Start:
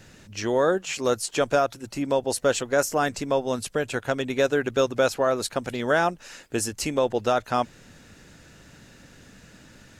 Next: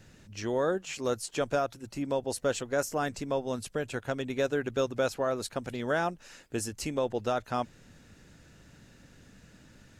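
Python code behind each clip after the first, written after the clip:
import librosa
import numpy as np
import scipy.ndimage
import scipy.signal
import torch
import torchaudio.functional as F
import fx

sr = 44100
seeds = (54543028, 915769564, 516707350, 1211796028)

y = fx.low_shelf(x, sr, hz=270.0, db=5.0)
y = y * 10.0 ** (-8.0 / 20.0)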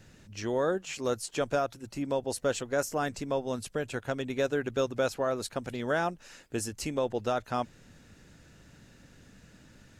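y = x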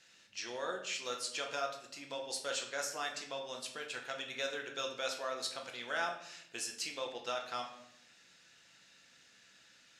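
y = fx.bandpass_q(x, sr, hz=3900.0, q=0.87)
y = fx.room_shoebox(y, sr, seeds[0], volume_m3=180.0, walls='mixed', distance_m=0.78)
y = y * 10.0 ** (1.0 / 20.0)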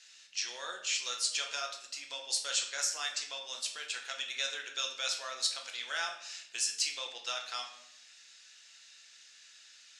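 y = fx.weighting(x, sr, curve='ITU-R 468')
y = y * 10.0 ** (-3.0 / 20.0)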